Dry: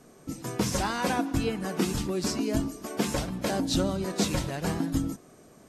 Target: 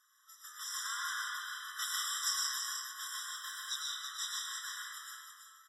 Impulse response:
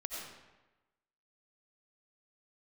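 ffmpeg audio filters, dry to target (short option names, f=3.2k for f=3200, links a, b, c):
-filter_complex "[0:a]asettb=1/sr,asplit=3[a][b][c];[a]atrim=end=1.764[d];[b]atrim=start=1.76:end=2.61,asetpts=PTS-STARTPTS,afade=t=in:d=0.004:c=qsin,afade=t=out:st=0.846:d=0.004:c=qsin,acontrast=71[e];[c]atrim=start=2.606[f];[d][e]acrossfade=d=0.004:c1=hsin:c2=qsin[g];[g][f]acrossfade=d=0.004:c1=qsin:c2=hsin,aecho=1:1:330:0.447,asplit=3[h][i][j];[h]afade=t=out:st=3.26:d=0.02[k];[i]aeval=exprs='sgn(val(0))*max(abs(val(0))-0.00668,0)':c=same,afade=t=in:st=3.26:d=0.02,afade=t=out:st=3.7:d=0.02[l];[j]afade=t=in:st=3.7:d=0.02[m];[k][l][m]amix=inputs=3:normalize=0,equalizer=f=360:w=0.35:g=-10[n];[1:a]atrim=start_sample=2205,asetrate=33516,aresample=44100[o];[n][o]afir=irnorm=-1:irlink=0,afftfilt=real='re*eq(mod(floor(b*sr/1024/1000),2),1)':imag='im*eq(mod(floor(b*sr/1024/1000),2),1)':win_size=1024:overlap=0.75,volume=-2.5dB"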